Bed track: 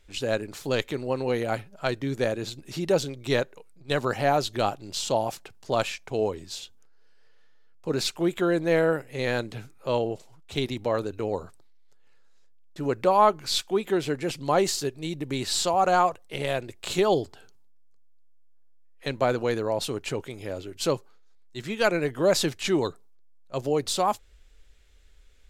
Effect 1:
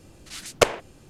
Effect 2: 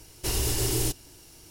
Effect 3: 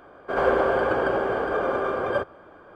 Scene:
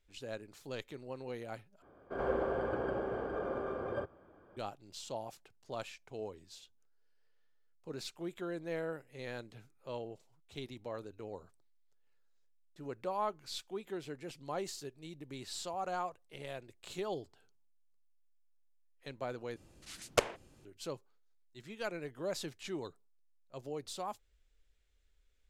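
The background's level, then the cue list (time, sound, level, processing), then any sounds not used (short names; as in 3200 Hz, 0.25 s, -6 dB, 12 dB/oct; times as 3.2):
bed track -16.5 dB
1.82 replace with 3 -17.5 dB + low shelf 460 Hz +11 dB
19.56 replace with 1 -11 dB
not used: 2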